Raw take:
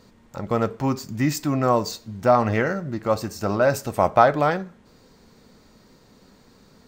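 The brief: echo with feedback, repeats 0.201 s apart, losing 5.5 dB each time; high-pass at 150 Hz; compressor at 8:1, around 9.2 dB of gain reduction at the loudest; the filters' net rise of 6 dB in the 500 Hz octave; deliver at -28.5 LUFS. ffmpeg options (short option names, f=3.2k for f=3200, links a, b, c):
-af "highpass=150,equalizer=f=500:t=o:g=7.5,acompressor=threshold=-16dB:ratio=8,aecho=1:1:201|402|603|804|1005|1206|1407:0.531|0.281|0.149|0.079|0.0419|0.0222|0.0118,volume=-6.5dB"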